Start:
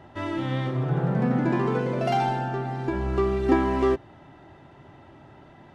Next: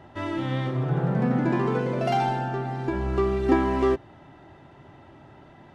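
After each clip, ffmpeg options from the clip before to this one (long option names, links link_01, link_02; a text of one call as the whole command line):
ffmpeg -i in.wav -af anull out.wav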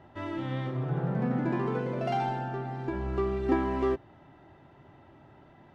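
ffmpeg -i in.wav -af "highshelf=frequency=5700:gain=-9,volume=-5.5dB" out.wav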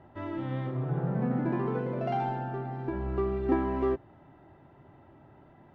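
ffmpeg -i in.wav -af "lowpass=frequency=1600:poles=1" out.wav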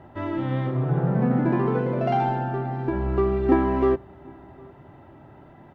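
ffmpeg -i in.wav -filter_complex "[0:a]asplit=2[link_01][link_02];[link_02]adelay=758,volume=-27dB,highshelf=frequency=4000:gain=-17.1[link_03];[link_01][link_03]amix=inputs=2:normalize=0,volume=7.5dB" out.wav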